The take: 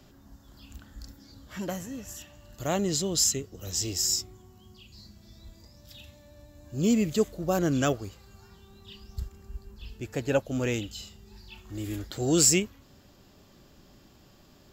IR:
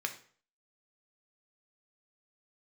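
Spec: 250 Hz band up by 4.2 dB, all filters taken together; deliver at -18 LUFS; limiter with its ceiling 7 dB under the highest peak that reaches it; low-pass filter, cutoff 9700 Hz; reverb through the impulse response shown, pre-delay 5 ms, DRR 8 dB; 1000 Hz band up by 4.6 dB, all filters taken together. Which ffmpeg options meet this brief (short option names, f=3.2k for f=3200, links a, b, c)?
-filter_complex "[0:a]lowpass=9.7k,equalizer=f=250:t=o:g=5,equalizer=f=1k:t=o:g=6.5,alimiter=limit=-16dB:level=0:latency=1,asplit=2[a][b];[1:a]atrim=start_sample=2205,adelay=5[c];[b][c]afir=irnorm=-1:irlink=0,volume=-11dB[d];[a][d]amix=inputs=2:normalize=0,volume=10dB"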